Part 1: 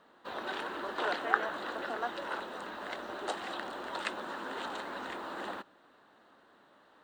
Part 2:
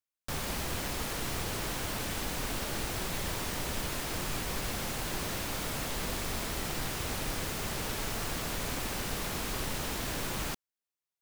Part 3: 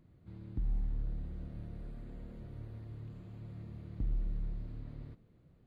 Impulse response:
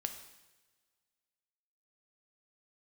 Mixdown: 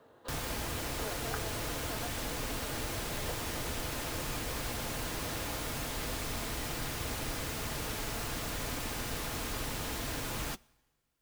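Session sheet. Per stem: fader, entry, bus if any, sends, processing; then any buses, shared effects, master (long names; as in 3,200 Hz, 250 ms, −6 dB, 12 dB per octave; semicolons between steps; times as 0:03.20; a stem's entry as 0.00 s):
−14.0 dB, 0.00 s, no send, parametric band 470 Hz +12 dB 1.4 octaves
−2.0 dB, 0.00 s, send −17 dB, no processing
−11.0 dB, 0.00 s, no send, resonant band-pass 600 Hz, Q 0.59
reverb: on, pre-delay 3 ms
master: notch comb filter 190 Hz; multiband upward and downward compressor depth 40%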